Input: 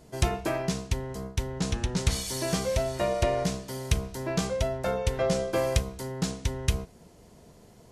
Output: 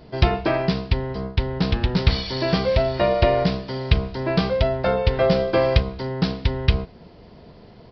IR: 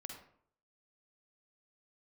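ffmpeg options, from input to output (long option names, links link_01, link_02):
-af "aresample=11025,aresample=44100,volume=8dB"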